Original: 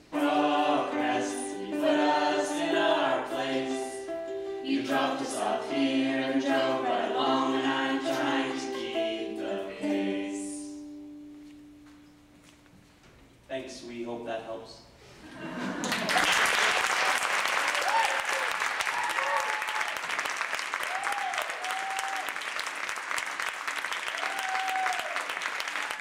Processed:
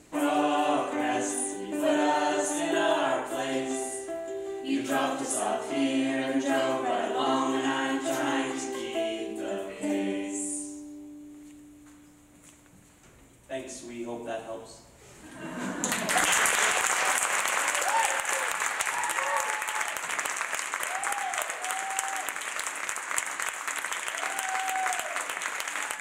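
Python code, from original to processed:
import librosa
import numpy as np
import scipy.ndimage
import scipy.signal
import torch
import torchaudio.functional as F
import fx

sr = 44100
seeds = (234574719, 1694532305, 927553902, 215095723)

y = fx.high_shelf_res(x, sr, hz=6100.0, db=6.0, q=3.0)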